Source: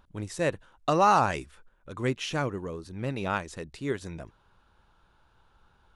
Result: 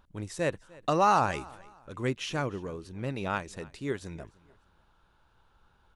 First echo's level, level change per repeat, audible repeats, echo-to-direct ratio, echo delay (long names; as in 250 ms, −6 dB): −23.0 dB, −10.0 dB, 2, −22.5 dB, 301 ms